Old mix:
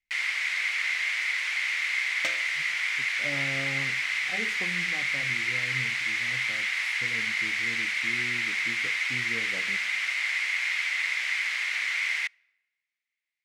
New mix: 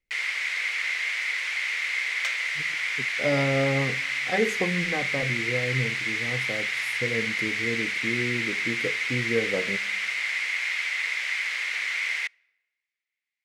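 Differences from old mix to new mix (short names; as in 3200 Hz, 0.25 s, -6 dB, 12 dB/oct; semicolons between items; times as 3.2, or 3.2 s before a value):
speech +10.5 dB; second sound: add HPF 880 Hz 24 dB/oct; master: add bell 470 Hz +8.5 dB 0.57 oct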